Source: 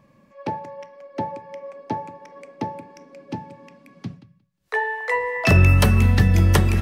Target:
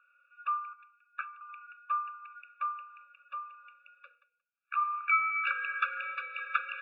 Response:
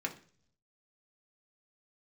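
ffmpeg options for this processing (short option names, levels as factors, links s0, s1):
-filter_complex "[0:a]asettb=1/sr,asplit=3[s0][s1][s2];[s0]atrim=end=0.734[s3];[s1]atrim=start=0.73:end=1.41,asetpts=PTS-STARTPTS,afade=t=in:d=0.004:c=qsin,afade=t=out:st=0.676:d=0.004:c=qsin,aeval=exprs='0.2*(cos(1*acos(clip(val(0)/0.2,-1,1)))-cos(1*PI/2))+0.0891*(cos(3*acos(clip(val(0)/0.2,-1,1)))-cos(3*PI/2))+0.0251*(cos(4*acos(clip(val(0)/0.2,-1,1)))-cos(4*PI/2))':c=same[s4];[s2]atrim=start=1.406[s5];[s3][s4]acrossfade=d=0.004:c1=hsin:c2=qsin[s6];[s6][s5]acrossfade=d=0.004:c1=qsin:c2=hsin,highpass=f=560:t=q:w=0.5412,highpass=f=560:t=q:w=1.307,lowpass=f=2400:t=q:w=0.5176,lowpass=f=2400:t=q:w=0.7071,lowpass=f=2400:t=q:w=1.932,afreqshift=320,afftfilt=real='re*eq(mod(floor(b*sr/1024/570),2),0)':imag='im*eq(mod(floor(b*sr/1024/570),2),0)':win_size=1024:overlap=0.75,volume=0.841"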